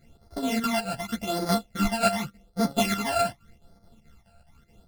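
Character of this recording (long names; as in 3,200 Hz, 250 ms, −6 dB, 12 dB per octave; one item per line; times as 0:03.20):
a buzz of ramps at a fixed pitch in blocks of 64 samples
phaser sweep stages 12, 0.86 Hz, lowest notch 340–2,700 Hz
chopped level 4.7 Hz, depth 60%, duty 75%
a shimmering, thickened sound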